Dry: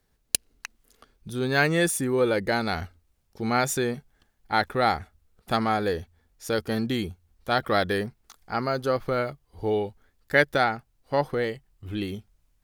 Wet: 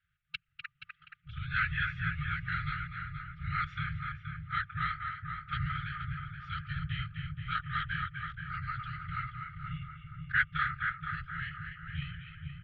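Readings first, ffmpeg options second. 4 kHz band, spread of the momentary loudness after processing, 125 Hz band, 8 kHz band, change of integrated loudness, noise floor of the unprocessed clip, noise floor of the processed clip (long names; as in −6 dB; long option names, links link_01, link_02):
−11.0 dB, 13 LU, −3.0 dB, below −40 dB, −9.5 dB, −70 dBFS, −76 dBFS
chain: -filter_complex "[0:a]asplit=2[link_01][link_02];[link_02]adelay=250,highpass=300,lowpass=3400,asoftclip=type=hard:threshold=-11.5dB,volume=-7dB[link_03];[link_01][link_03]amix=inputs=2:normalize=0,asplit=2[link_04][link_05];[link_05]acompressor=threshold=-35dB:ratio=6,volume=-3dB[link_06];[link_04][link_06]amix=inputs=2:normalize=0,afftfilt=real='hypot(re,im)*cos(2*PI*random(0))':imag='hypot(re,im)*sin(2*PI*random(1))':win_size=512:overlap=0.75,asplit=2[link_07][link_08];[link_08]adelay=476,lowpass=frequency=1500:poles=1,volume=-4dB,asplit=2[link_09][link_10];[link_10]adelay=476,lowpass=frequency=1500:poles=1,volume=0.47,asplit=2[link_11][link_12];[link_12]adelay=476,lowpass=frequency=1500:poles=1,volume=0.47,asplit=2[link_13][link_14];[link_14]adelay=476,lowpass=frequency=1500:poles=1,volume=0.47,asplit=2[link_15][link_16];[link_16]adelay=476,lowpass=frequency=1500:poles=1,volume=0.47,asplit=2[link_17][link_18];[link_18]adelay=476,lowpass=frequency=1500:poles=1,volume=0.47[link_19];[link_09][link_11][link_13][link_15][link_17][link_19]amix=inputs=6:normalize=0[link_20];[link_07][link_20]amix=inputs=2:normalize=0,highpass=frequency=190:width_type=q:width=0.5412,highpass=frequency=190:width_type=q:width=1.307,lowpass=frequency=3200:width_type=q:width=0.5176,lowpass=frequency=3200:width_type=q:width=0.7071,lowpass=frequency=3200:width_type=q:width=1.932,afreqshift=-120,afftfilt=real='re*(1-between(b*sr/4096,170,1200))':imag='im*(1-between(b*sr/4096,170,1200))':win_size=4096:overlap=0.75"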